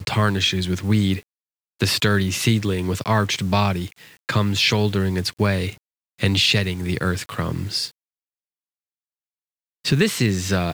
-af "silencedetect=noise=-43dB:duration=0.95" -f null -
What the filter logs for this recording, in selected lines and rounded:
silence_start: 7.90
silence_end: 9.85 | silence_duration: 1.95